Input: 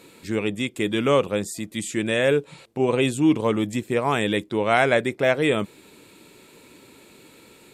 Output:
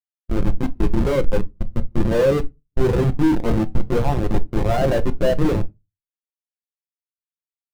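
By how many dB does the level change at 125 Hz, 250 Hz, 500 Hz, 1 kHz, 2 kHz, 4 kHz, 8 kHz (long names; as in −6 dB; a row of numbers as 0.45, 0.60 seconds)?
+8.0, +2.0, +1.0, −2.0, −8.0, −7.5, −8.0 decibels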